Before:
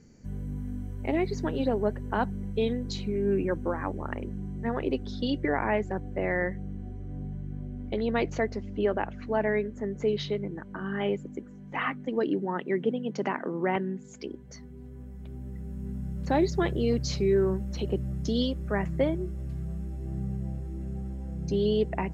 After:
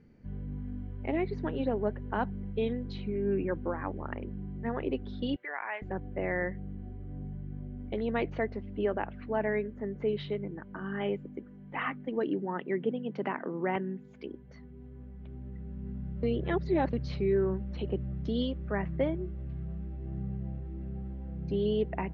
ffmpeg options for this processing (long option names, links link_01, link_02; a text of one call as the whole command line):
ffmpeg -i in.wav -filter_complex "[0:a]asettb=1/sr,asplit=3[link_01][link_02][link_03];[link_01]atrim=end=5.364[link_04];[link_02]atrim=start=5.36:end=5.82,asetpts=PTS-STARTPTS,afade=type=in:duration=0.004:curve=qsin,afade=type=out:start_time=0.456:duration=0.004:curve=qsin,highpass=1100[link_05];[link_03]atrim=start=5.816[link_06];[link_04][link_05]acrossfade=duration=0.004:curve1=hsin:curve2=qsin[link_07];[link_07][link_06]acrossfade=duration=0.004:curve1=qsin:curve2=hsin,asplit=3[link_08][link_09][link_10];[link_08]atrim=end=16.232[link_11];[link_09]atrim=start=16.228:end=16.932,asetpts=PTS-STARTPTS,areverse[link_12];[link_10]atrim=start=16.928[link_13];[link_11][link_12]acrossfade=duration=0.004:curve1=hsin:curve2=hsin[link_14];[link_14][link_13]acrossfade=duration=0.004:curve1=hsin:curve2=hsin,lowpass=frequency=3400:width=0.5412,lowpass=frequency=3400:width=1.3066,volume=-3.5dB" out.wav